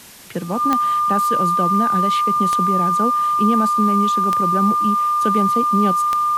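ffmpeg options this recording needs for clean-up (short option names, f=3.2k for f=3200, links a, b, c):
-af "adeclick=t=4,bandreject=f=1.2k:w=30,afwtdn=0.0089"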